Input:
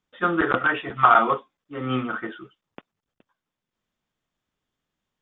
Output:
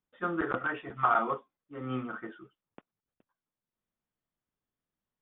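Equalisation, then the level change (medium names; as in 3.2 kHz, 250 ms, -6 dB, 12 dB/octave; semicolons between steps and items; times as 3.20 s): distance through air 91 m; treble shelf 3.3 kHz -11 dB; -8.5 dB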